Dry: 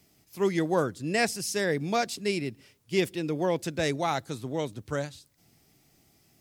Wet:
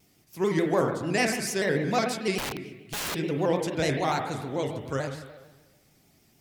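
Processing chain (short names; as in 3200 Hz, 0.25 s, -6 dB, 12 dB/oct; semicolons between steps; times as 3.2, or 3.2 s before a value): spring tank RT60 1.2 s, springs 34/41/47 ms, chirp 70 ms, DRR 3 dB; 2.38–3.15 wrapped overs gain 27 dB; shaped vibrato square 6.8 Hz, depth 100 cents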